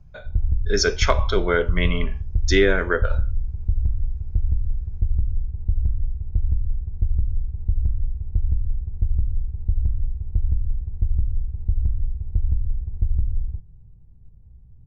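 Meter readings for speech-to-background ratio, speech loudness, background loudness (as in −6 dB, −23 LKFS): 5.5 dB, −22.0 LKFS, −27.5 LKFS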